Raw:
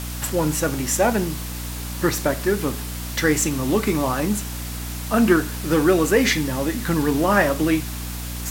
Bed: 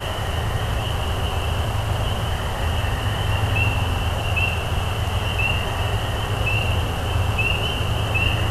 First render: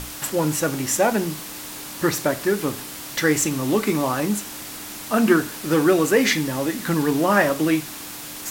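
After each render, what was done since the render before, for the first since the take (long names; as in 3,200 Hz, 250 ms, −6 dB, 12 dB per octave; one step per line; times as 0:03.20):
mains-hum notches 60/120/180/240 Hz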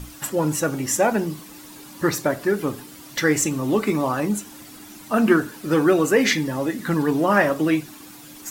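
broadband denoise 11 dB, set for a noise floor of −35 dBFS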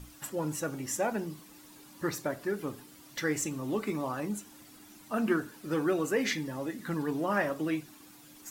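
level −11.5 dB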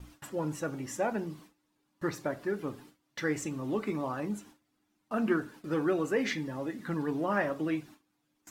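low-pass filter 3,200 Hz 6 dB per octave
noise gate with hold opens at −42 dBFS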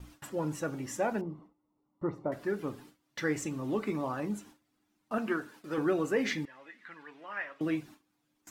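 0:01.21–0:02.32: Savitzky-Golay smoothing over 65 samples
0:05.18–0:05.78: low-shelf EQ 280 Hz −11 dB
0:06.45–0:07.61: resonant band-pass 2,200 Hz, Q 2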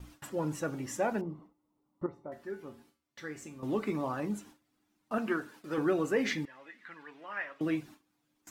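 0:02.06–0:03.63: tuned comb filter 78 Hz, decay 0.31 s, harmonics odd, mix 80%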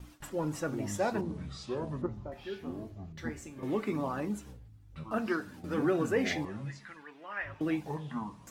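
delay with pitch and tempo change per echo 202 ms, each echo −7 semitones, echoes 3, each echo −6 dB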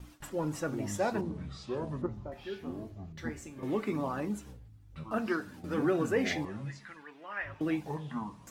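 0:01.29–0:01.74: high-shelf EQ 4,900 Hz −6.5 dB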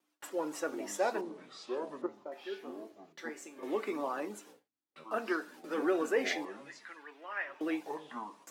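high-pass filter 320 Hz 24 dB per octave
noise gate with hold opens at −47 dBFS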